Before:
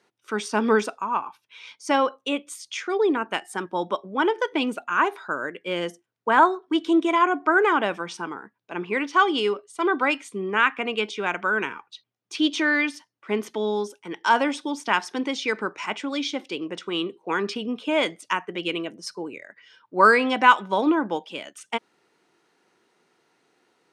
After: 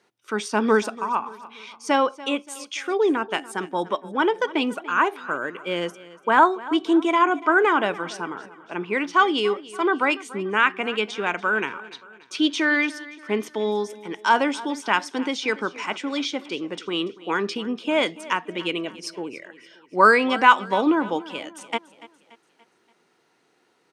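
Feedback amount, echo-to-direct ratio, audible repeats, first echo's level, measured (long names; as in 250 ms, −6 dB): 47%, −17.5 dB, 3, −18.5 dB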